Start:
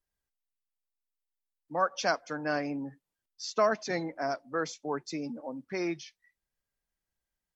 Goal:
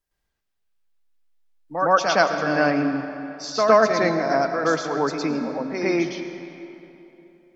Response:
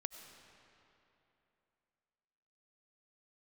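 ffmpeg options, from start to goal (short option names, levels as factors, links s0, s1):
-filter_complex "[0:a]asplit=2[s0][s1];[1:a]atrim=start_sample=2205,lowpass=4800,adelay=112[s2];[s1][s2]afir=irnorm=-1:irlink=0,volume=2.82[s3];[s0][s3]amix=inputs=2:normalize=0,volume=1.58"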